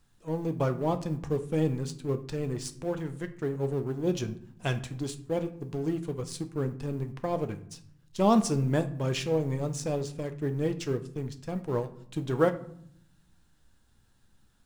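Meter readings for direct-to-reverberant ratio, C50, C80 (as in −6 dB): 8.0 dB, 14.0 dB, 18.0 dB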